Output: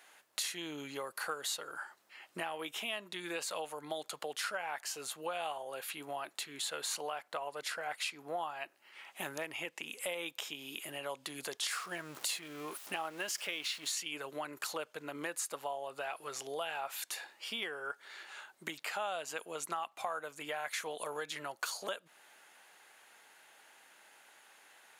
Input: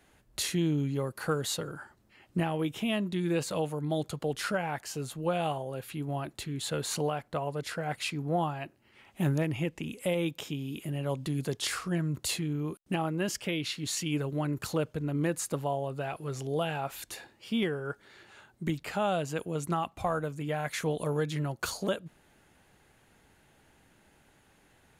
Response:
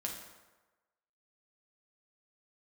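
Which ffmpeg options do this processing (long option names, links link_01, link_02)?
-filter_complex "[0:a]asettb=1/sr,asplit=3[link_01][link_02][link_03];[link_01]atrim=end=11.714[link_04];[link_02]atrim=start=11.71:end=13.92,asetpts=PTS-STARTPTS,afade=type=in:duration=0.004:curve=qsin,afade=type=out:start_time=2.206:duration=0.004:curve=qsin,aeval=exprs='val(0)+0.5*0.00596*sgn(val(0))':channel_layout=same[link_05];[link_03]atrim=start=13.916[link_06];[link_04][link_05]acrossfade=duration=0.004:curve1=hsin:curve2=qsin[link_07];[link_07][link_06]acrossfade=duration=0.004:curve1=qsin:curve2=hsin,highpass=800,acompressor=threshold=-45dB:ratio=2.5,volume=6dB"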